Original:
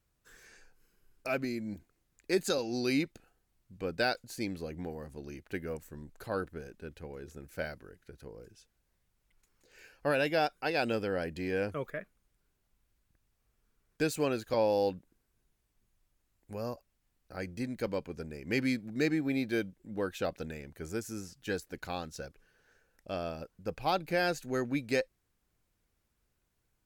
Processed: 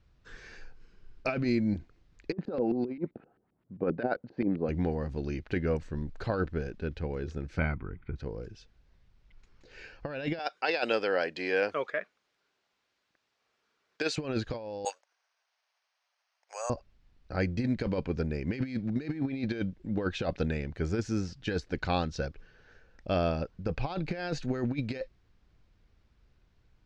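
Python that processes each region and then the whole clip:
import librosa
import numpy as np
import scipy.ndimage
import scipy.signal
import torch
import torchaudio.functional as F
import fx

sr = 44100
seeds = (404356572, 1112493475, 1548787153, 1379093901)

y = fx.chain(x, sr, fx.cheby1_bandpass(low_hz=200.0, high_hz=5100.0, order=2),
    fx.filter_lfo_lowpass(shape='saw_up', hz=7.6, low_hz=340.0, high_hz=2100.0, q=1.2), at=(2.32, 4.69))
y = fx.chain(y, sr, fx.lowpass(hz=2500.0, slope=24),
    fx.comb(ms=0.9, depth=0.67), at=(7.58, 8.16))
y = fx.chain(y, sr, fx.highpass(hz=520.0, slope=12),
    fx.high_shelf(hz=6600.0, db=6.0), at=(10.39, 14.18))
y = fx.chain(y, sr, fx.steep_highpass(hz=640.0, slope=36),
    fx.resample_bad(factor=6, down='filtered', up='zero_stuff'), at=(14.85, 16.7))
y = scipy.signal.sosfilt(scipy.signal.butter(4, 5100.0, 'lowpass', fs=sr, output='sos'), y)
y = fx.low_shelf(y, sr, hz=150.0, db=8.5)
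y = fx.over_compress(y, sr, threshold_db=-33.0, ratio=-0.5)
y = F.gain(torch.from_numpy(y), 4.5).numpy()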